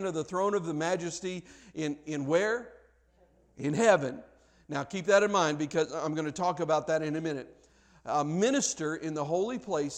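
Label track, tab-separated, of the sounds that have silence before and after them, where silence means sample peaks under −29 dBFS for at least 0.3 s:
1.790000	2.570000	sound
3.640000	4.100000	sound
4.720000	7.400000	sound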